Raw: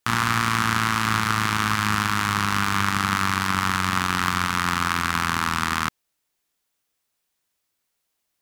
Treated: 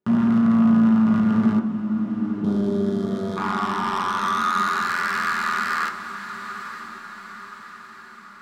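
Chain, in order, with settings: band-pass sweep 250 Hz -> 1.7 kHz, 2.09–4.97 s; in parallel at +2.5 dB: peak limiter -22.5 dBFS, peak gain reduction 11 dB; 1.68–3.37 s: on the sum: time-frequency box 710–3100 Hz -19 dB; saturation -25.5 dBFS, distortion -7 dB; 1.59–2.44 s: cascade formant filter u; echo that smears into a reverb 918 ms, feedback 54%, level -11 dB; on a send at -1 dB: reverberation RT60 0.35 s, pre-delay 3 ms; on the sum: trim +5 dB

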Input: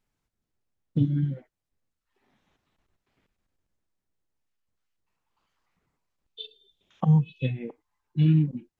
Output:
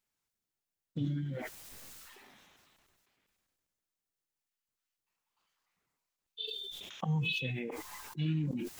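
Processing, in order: tilt EQ +2.5 dB/octave; decay stretcher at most 22 dB/s; trim -6.5 dB

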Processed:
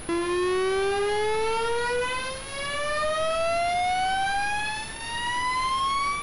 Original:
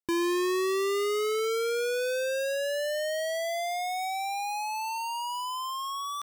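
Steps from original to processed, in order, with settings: comb filter that takes the minimum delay 2.8 ms; reverberation RT60 0.35 s, pre-delay 32 ms, DRR 8 dB; level rider gain up to 12 dB; overload inside the chain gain 24 dB; added noise pink -40 dBFS; class-D stage that switches slowly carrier 10 kHz

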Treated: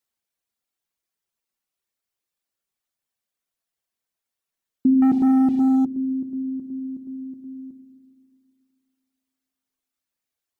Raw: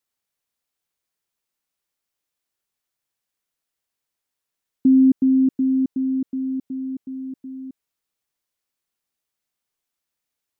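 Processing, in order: reverb removal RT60 1.2 s; reverberation RT60 2.8 s, pre-delay 4 ms, DRR 5.5 dB; 5.02–5.85 s: waveshaping leveller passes 2; trim -1 dB

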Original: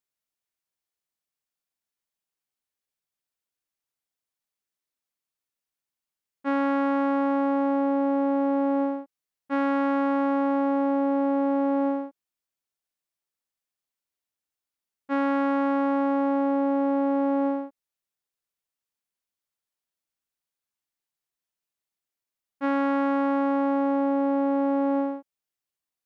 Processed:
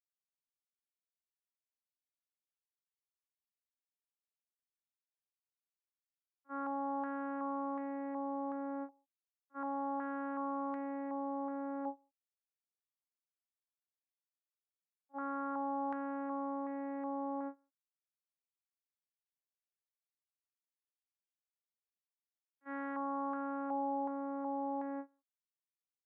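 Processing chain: gate -20 dBFS, range -48 dB; rippled Chebyshev high-pass 200 Hz, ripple 3 dB; step-sequenced low-pass 2.7 Hz 820–1900 Hz; trim +2.5 dB

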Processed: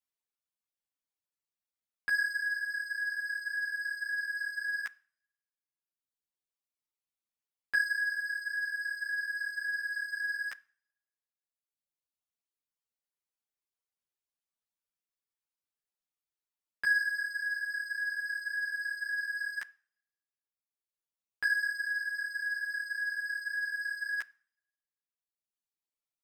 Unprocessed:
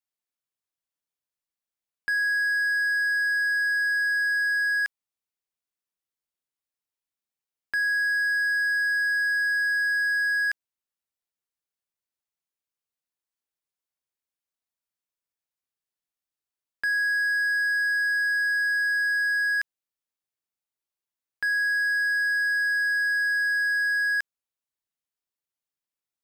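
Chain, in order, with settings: reverb removal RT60 1.9 s; two-slope reverb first 0.47 s, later 1.5 s, from -25 dB, DRR 19.5 dB; three-phase chorus; trim +1 dB

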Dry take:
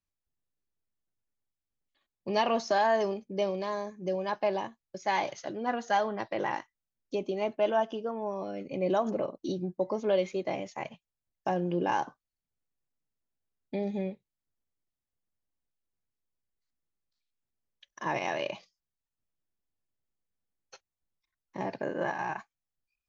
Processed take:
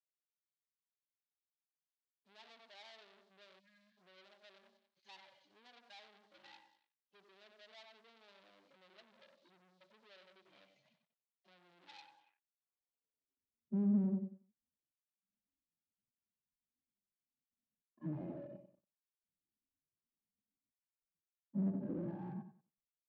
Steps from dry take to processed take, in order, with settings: harmonic-percussive separation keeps harmonic; low-pass that closes with the level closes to 1.8 kHz, closed at -29 dBFS; tilt EQ -3.5 dB/octave; on a send: feedback delay 93 ms, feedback 36%, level -10 dB; on the sum: spectral selection erased 3.59–3.98 s, 270–1500 Hz; peak limiter -23.5 dBFS, peak gain reduction 10.5 dB; waveshaping leveller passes 3; band-pass sweep 4 kHz -> 230 Hz, 12.09–13.49 s; upward expansion 1.5:1, over -50 dBFS; trim -2 dB

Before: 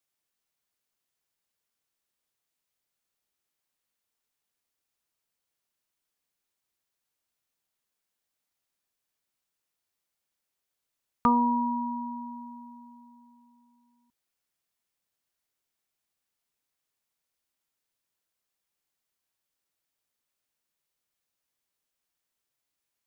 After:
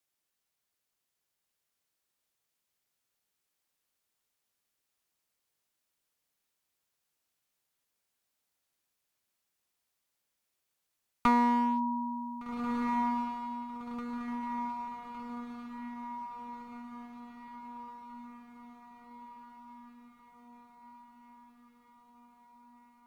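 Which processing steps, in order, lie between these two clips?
one-sided clip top -25 dBFS, bottom -14 dBFS; echo that smears into a reverb 1573 ms, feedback 61%, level -5 dB

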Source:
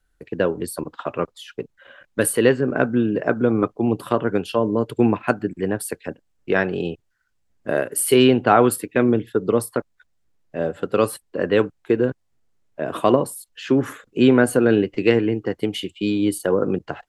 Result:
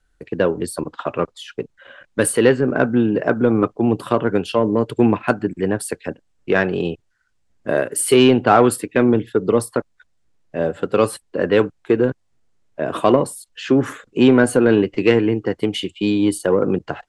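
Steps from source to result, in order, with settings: low-pass 10 kHz 24 dB/octave; in parallel at -3 dB: saturation -13 dBFS, distortion -11 dB; on the sum: trim -1 dB

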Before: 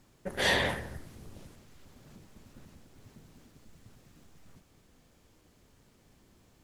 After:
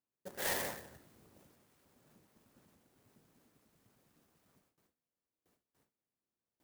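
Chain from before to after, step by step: gate with hold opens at -51 dBFS; high-pass 300 Hz 6 dB/octave; sampling jitter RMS 0.079 ms; trim -8.5 dB

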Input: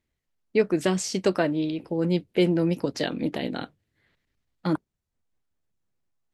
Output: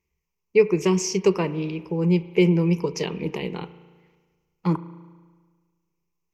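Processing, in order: rippled EQ curve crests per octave 0.78, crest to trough 16 dB; spring tank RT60 1.5 s, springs 35 ms, chirp 30 ms, DRR 14.5 dB; trim -1.5 dB

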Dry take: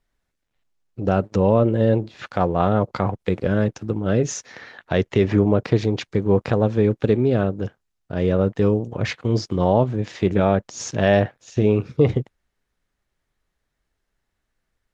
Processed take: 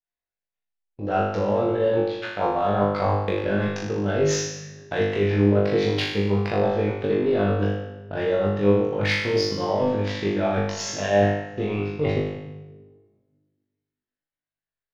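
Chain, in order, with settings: gate -36 dBFS, range -26 dB; low-pass 5.2 kHz 24 dB/octave; bass shelf 280 Hz -11 dB; band-stop 1.2 kHz, Q 15; reverse; compression, threshold -27 dBFS, peak gain reduction 12.5 dB; reverse; tremolo saw up 8.5 Hz, depth 45%; in parallel at -8 dB: saturation -34 dBFS, distortion -8 dB; on the sum: flutter echo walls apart 3.4 m, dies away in 0.84 s; reverberation RT60 1.5 s, pre-delay 6 ms, DRR 10.5 dB; trim +4 dB

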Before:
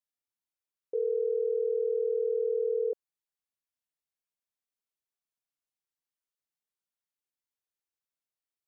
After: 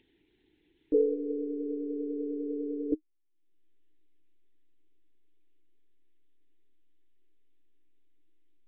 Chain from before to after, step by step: monotone LPC vocoder at 8 kHz 290 Hz; in parallel at -4 dB: hysteresis with a dead band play -57.5 dBFS; on the sum: FFT filter 220 Hz 0 dB, 310 Hz +15 dB, 590 Hz -22 dB, 870 Hz -10 dB, 1.2 kHz -24 dB, 1.8 kHz -3 dB; upward compressor, threshold -46 dBFS; small resonant body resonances 430 Hz, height 15 dB, ringing for 25 ms; trim -2 dB

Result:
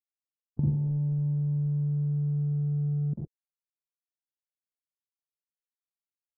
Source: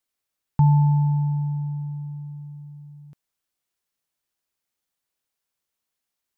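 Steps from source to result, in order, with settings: recorder AGC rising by 9.6 dB/s; high-pass 49 Hz 12 dB/octave; compression 6:1, threshold -28 dBFS, peak gain reduction 13.5 dB; feedback delay 74 ms, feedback 58%, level -18 dB; reverberation RT60 0.45 s, pre-delay 42 ms, DRR -1 dB; word length cut 6-bit, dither none; four-pole ladder low-pass 450 Hz, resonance 25%; trim +5 dB; Vorbis 64 kbps 44.1 kHz

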